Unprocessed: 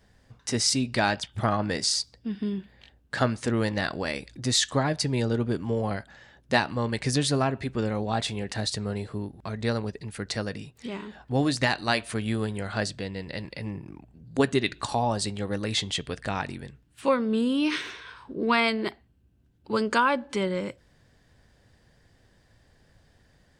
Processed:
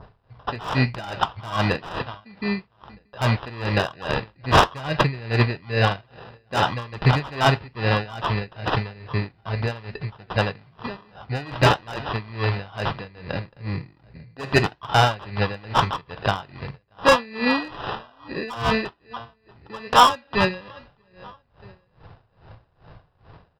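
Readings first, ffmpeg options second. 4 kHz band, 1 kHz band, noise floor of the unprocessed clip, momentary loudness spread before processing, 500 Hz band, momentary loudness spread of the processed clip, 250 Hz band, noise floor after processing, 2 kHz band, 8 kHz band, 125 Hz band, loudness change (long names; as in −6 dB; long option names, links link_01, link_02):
+2.0 dB, +8.0 dB, −63 dBFS, 13 LU, +3.0 dB, 16 LU, −1.0 dB, −63 dBFS, +5.0 dB, −8.0 dB, +6.5 dB, +4.5 dB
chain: -filter_complex "[0:a]bandreject=frequency=900:width=10,asplit=2[link_01][link_02];[link_02]adelay=634,lowpass=frequency=2500:poles=1,volume=-23dB,asplit=2[link_03][link_04];[link_04]adelay=634,lowpass=frequency=2500:poles=1,volume=0.37[link_05];[link_01][link_03][link_05]amix=inputs=3:normalize=0,acrusher=samples=20:mix=1:aa=0.000001,adynamicequalizer=threshold=0.00631:dfrequency=2900:dqfactor=0.84:tfrequency=2900:tqfactor=0.84:attack=5:release=100:ratio=0.375:range=3.5:mode=boostabove:tftype=bell,acompressor=mode=upward:threshold=-46dB:ratio=2.5,aresample=11025,aresample=44100,equalizer=frequency=125:width_type=o:width=1:gain=6,equalizer=frequency=250:width_type=o:width=1:gain=-6,equalizer=frequency=1000:width_type=o:width=1:gain=9,acontrast=34,asoftclip=type=hard:threshold=-10dB,flanger=delay=6.3:depth=5.5:regen=-76:speed=1:shape=sinusoidal,aeval=exprs='val(0)*pow(10,-22*(0.5-0.5*cos(2*PI*2.4*n/s))/20)':channel_layout=same,volume=7dB"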